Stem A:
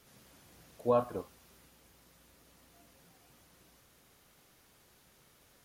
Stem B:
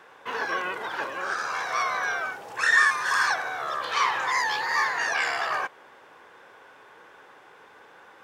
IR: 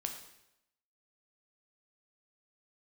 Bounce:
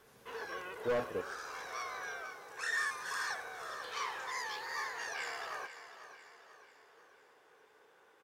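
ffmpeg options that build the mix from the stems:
-filter_complex "[0:a]volume=0.562,asplit=3[s0][s1][s2];[s0]atrim=end=2.22,asetpts=PTS-STARTPTS,afade=t=out:st=2.216:d=0.004:c=hsin[s3];[s1]atrim=start=2.22:end=2.76,asetpts=PTS-STARTPTS,volume=0[s4];[s2]atrim=start=2.76,asetpts=PTS-STARTPTS,afade=t=in:d=0.004:c=hsin[s5];[s3][s4][s5]concat=n=3:v=0:a=1[s6];[1:a]aemphasis=mode=production:type=cd,volume=0.158,asplit=2[s7][s8];[s8]volume=0.251,aecho=0:1:494|988|1482|1976|2470|2964|3458:1|0.48|0.23|0.111|0.0531|0.0255|0.0122[s9];[s6][s7][s9]amix=inputs=3:normalize=0,equalizer=f=440:t=o:w=0.49:g=8.5,asoftclip=type=hard:threshold=0.0376"

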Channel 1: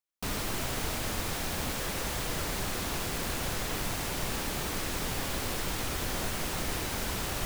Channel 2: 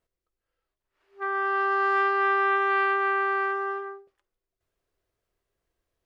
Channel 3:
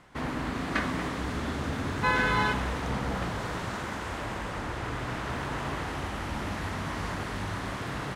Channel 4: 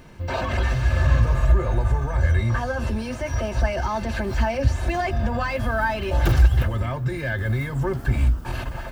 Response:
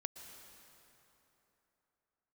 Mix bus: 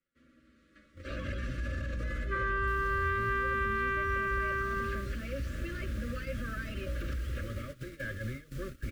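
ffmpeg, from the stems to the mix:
-filter_complex "[0:a]adelay=2450,volume=0.188[s0];[1:a]aeval=exprs='val(0)+0.01*(sin(2*PI*60*n/s)+sin(2*PI*2*60*n/s)/2+sin(2*PI*3*60*n/s)/3+sin(2*PI*4*60*n/s)/4+sin(2*PI*5*60*n/s)/5)':c=same,adelay=1100,volume=1.06[s1];[2:a]asplit=2[s2][s3];[s3]adelay=8.8,afreqshift=-0.58[s4];[s2][s4]amix=inputs=2:normalize=1,volume=0.237[s5];[3:a]adelay=750,volume=0.282[s6];[s5][s6]amix=inputs=2:normalize=0,aecho=1:1:3.6:0.47,alimiter=level_in=1.26:limit=0.0631:level=0:latency=1:release=19,volume=0.794,volume=1[s7];[s0][s1][s7]amix=inputs=3:normalize=0,agate=range=0.141:threshold=0.0158:ratio=16:detection=peak,acrossover=split=190|820|2900[s8][s9][s10][s11];[s8]acompressor=threshold=0.0224:ratio=4[s12];[s9]acompressor=threshold=0.01:ratio=4[s13];[s10]acompressor=threshold=0.0355:ratio=4[s14];[s11]acompressor=threshold=0.00141:ratio=4[s15];[s12][s13][s14][s15]amix=inputs=4:normalize=0,asuperstop=centerf=850:order=12:qfactor=1.5"

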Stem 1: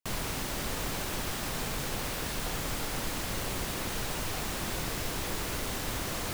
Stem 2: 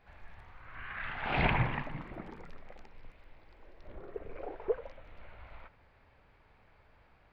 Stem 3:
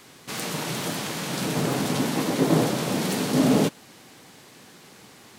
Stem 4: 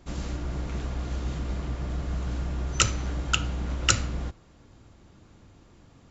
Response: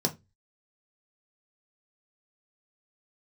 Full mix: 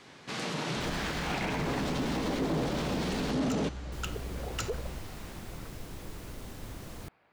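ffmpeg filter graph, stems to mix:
-filter_complex "[0:a]lowshelf=f=480:g=10,adelay=750,volume=0.178,asplit=3[s0][s1][s2];[s0]atrim=end=3.31,asetpts=PTS-STARTPTS,afade=t=out:st=3.306:d=0.004:c=hsin[s3];[s1]atrim=start=3.31:end=3.92,asetpts=PTS-STARTPTS,volume=0[s4];[s2]atrim=start=3.92,asetpts=PTS-STARTPTS,afade=t=in:d=0.004:c=hsin[s5];[s3][s4][s5]concat=n=3:v=0:a=1[s6];[1:a]highpass=180,acontrast=76,volume=0.422[s7];[2:a]lowpass=5200,asoftclip=type=tanh:threshold=0.168,volume=0.708[s8];[3:a]asoftclip=type=tanh:threshold=0.158,adelay=700,volume=0.316[s9];[s6][s7][s8][s9]amix=inputs=4:normalize=0,alimiter=limit=0.0668:level=0:latency=1:release=44"

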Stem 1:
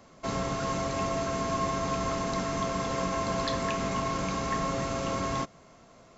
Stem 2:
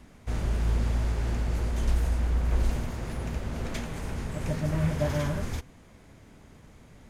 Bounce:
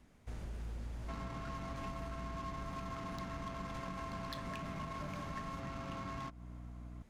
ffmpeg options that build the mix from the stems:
-filter_complex "[0:a]equalizer=f=480:t=o:w=0.89:g=-12,aeval=exprs='val(0)+0.00562*(sin(2*PI*60*n/s)+sin(2*PI*2*60*n/s)/2+sin(2*PI*3*60*n/s)/3+sin(2*PI*4*60*n/s)/4+sin(2*PI*5*60*n/s)/5)':c=same,adynamicsmooth=sensitivity=7:basefreq=1500,adelay=850,volume=0.794[s0];[1:a]aeval=exprs='0.1*(abs(mod(val(0)/0.1+3,4)-2)-1)':c=same,volume=0.251[s1];[s0][s1]amix=inputs=2:normalize=0,acompressor=threshold=0.01:ratio=6"

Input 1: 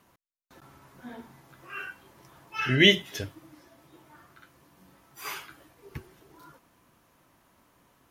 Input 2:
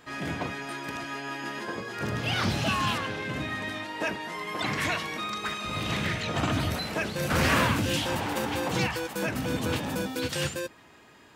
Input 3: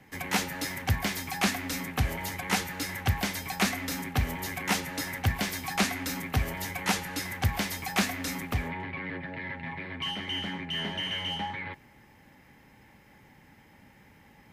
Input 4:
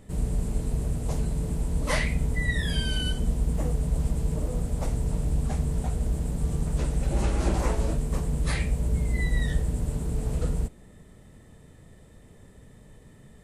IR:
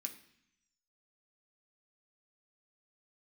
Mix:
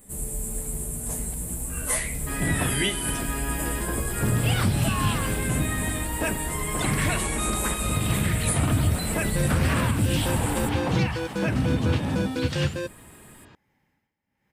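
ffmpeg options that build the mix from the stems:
-filter_complex "[0:a]volume=0.501[s0];[1:a]lowpass=5500,equalizer=f=68:w=0.35:g=12,adelay=2200,volume=1.12[s1];[2:a]acompressor=threshold=0.0158:ratio=6,tremolo=f=1.2:d=0.82,adelay=450,volume=0.211[s2];[3:a]aexciter=amount=11.1:drive=2.7:freq=7700,asplit=2[s3][s4];[s4]adelay=11.9,afreqshift=0.46[s5];[s3][s5]amix=inputs=2:normalize=1,volume=0.841,asplit=2[s6][s7];[s7]volume=0.631[s8];[4:a]atrim=start_sample=2205[s9];[s8][s9]afir=irnorm=-1:irlink=0[s10];[s0][s1][s2][s6][s10]amix=inputs=5:normalize=0,alimiter=limit=0.224:level=0:latency=1:release=203"

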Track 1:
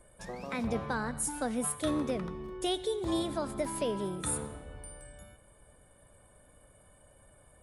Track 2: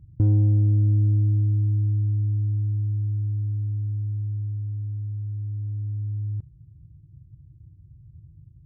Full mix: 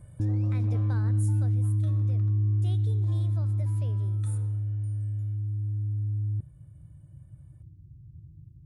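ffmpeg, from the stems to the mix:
-filter_complex "[0:a]volume=0.668,afade=t=out:st=0.86:d=0.71:silence=0.251189[s0];[1:a]equalizer=f=240:t=o:w=1.7:g=5,volume=0.794[s1];[s0][s1]amix=inputs=2:normalize=0,alimiter=limit=0.0944:level=0:latency=1"

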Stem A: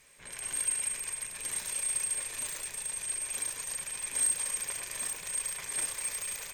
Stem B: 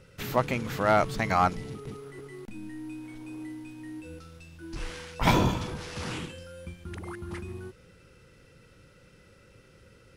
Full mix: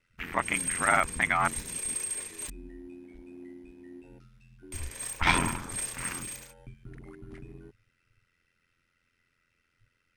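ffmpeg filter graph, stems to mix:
-filter_complex "[0:a]agate=range=0.0224:threshold=0.02:ratio=3:detection=peak,volume=0.841,asplit=3[s0][s1][s2];[s0]atrim=end=2.5,asetpts=PTS-STARTPTS,afade=t=out:st=2.496:d=0.004:c=hsin[s3];[s1]atrim=start=2.5:end=4.72,asetpts=PTS-STARTPTS,volume=0[s4];[s2]atrim=start=4.72,asetpts=PTS-STARTPTS,afade=t=in:d=0.004:c=hsin[s5];[s3][s4][s5]concat=n=3:v=0:a=1[s6];[1:a]afwtdn=0.0126,equalizer=f=125:t=o:w=1:g=-12,equalizer=f=500:t=o:w=1:g=-12,equalizer=f=2000:t=o:w=1:g=8,aeval=exprs='val(0)*sin(2*PI*43*n/s)':c=same,volume=1.33[s7];[s6][s7]amix=inputs=2:normalize=0"

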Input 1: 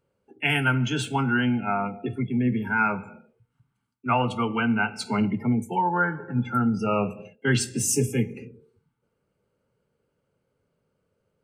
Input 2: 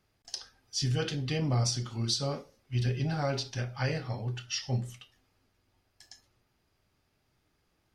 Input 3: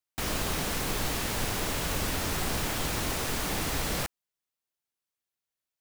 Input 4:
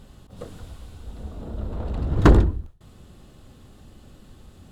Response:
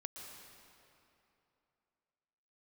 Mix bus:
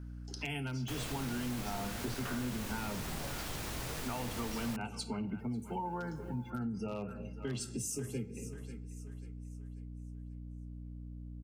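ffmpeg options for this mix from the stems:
-filter_complex "[0:a]aeval=exprs='0.224*(abs(mod(val(0)/0.224+3,4)-2)-1)':c=same,aeval=exprs='val(0)+0.01*(sin(2*PI*60*n/s)+sin(2*PI*2*60*n/s)/2+sin(2*PI*3*60*n/s)/3+sin(2*PI*4*60*n/s)/4+sin(2*PI*5*60*n/s)/5)':c=same,volume=0.668,asplit=2[s0][s1];[s1]volume=0.0708[s2];[1:a]acompressor=threshold=0.0224:ratio=6,volume=0.447[s3];[2:a]acompressor=mode=upward:threshold=0.00562:ratio=2.5,adelay=700,volume=0.473[s4];[3:a]aeval=exprs='val(0)*sin(2*PI*1500*n/s)':c=same,volume=0.211[s5];[s0][s3][s5]amix=inputs=3:normalize=0,equalizer=f=1600:t=o:w=0.95:g=-11.5,alimiter=limit=0.0668:level=0:latency=1:release=232,volume=1[s6];[s2]aecho=0:1:540|1080|1620|2160|2700:1|0.38|0.144|0.0549|0.0209[s7];[s4][s6][s7]amix=inputs=3:normalize=0,acompressor=threshold=0.0112:ratio=2"

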